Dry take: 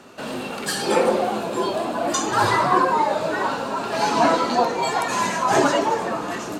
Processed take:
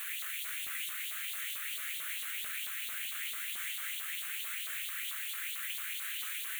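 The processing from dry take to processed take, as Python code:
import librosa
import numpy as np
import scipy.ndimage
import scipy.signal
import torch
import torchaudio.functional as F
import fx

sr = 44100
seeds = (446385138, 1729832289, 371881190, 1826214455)

y = scipy.signal.sosfilt(scipy.signal.butter(4, 720.0, 'highpass', fs=sr, output='sos'), x)
y = fx.spec_gate(y, sr, threshold_db=-30, keep='weak')
y = fx.peak_eq(y, sr, hz=3000.0, db=10.0, octaves=1.8)
y = fx.over_compress(y, sr, threshold_db=-50.0, ratio=-1.0)
y = fx.quant_dither(y, sr, seeds[0], bits=6, dither='triangular')
y = fx.filter_lfo_highpass(y, sr, shape='saw_up', hz=4.5, low_hz=940.0, high_hz=3900.0, q=3.1)
y = fx.fixed_phaser(y, sr, hz=2200.0, stages=4)
y = fx.echo_alternate(y, sr, ms=497, hz=2300.0, feedback_pct=54, wet_db=-10)
y = F.gain(torch.from_numpy(y), -2.5).numpy()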